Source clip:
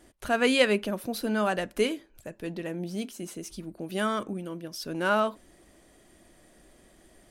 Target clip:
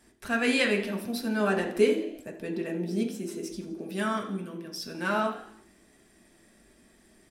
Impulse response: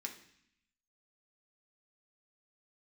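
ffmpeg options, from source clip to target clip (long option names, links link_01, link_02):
-filter_complex "[0:a]asettb=1/sr,asplit=3[link_01][link_02][link_03];[link_01]atrim=end=1.404[link_04];[link_02]atrim=start=1.4:end=3.82,asetpts=PTS-STARTPTS,afade=type=in:duration=0.004:curve=qsin,afade=type=out:start_time=2.416:duration=0.004:curve=qsin,equalizer=frequency=400:width_type=o:width=1.4:gain=7.5[link_05];[link_03]atrim=start=3.816[link_06];[link_04][link_05]acrossfade=duration=0.004:curve1=hsin:curve2=qsin[link_07];[link_07][link_06]acrossfade=duration=0.004:curve1=qsin:curve2=hsin,asplit=5[link_08][link_09][link_10][link_11][link_12];[link_09]adelay=83,afreqshift=56,volume=-17dB[link_13];[link_10]adelay=166,afreqshift=112,volume=-23.7dB[link_14];[link_11]adelay=249,afreqshift=168,volume=-30.5dB[link_15];[link_12]adelay=332,afreqshift=224,volume=-37.2dB[link_16];[link_08][link_13][link_14][link_15][link_16]amix=inputs=5:normalize=0[link_17];[1:a]atrim=start_sample=2205,afade=type=out:start_time=0.41:duration=0.01,atrim=end_sample=18522[link_18];[link_17][link_18]afir=irnorm=-1:irlink=0,volume=1dB"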